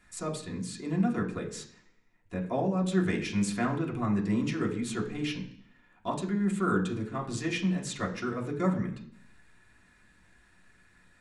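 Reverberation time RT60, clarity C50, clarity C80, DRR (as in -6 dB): 0.60 s, 11.0 dB, 13.5 dB, -2.5 dB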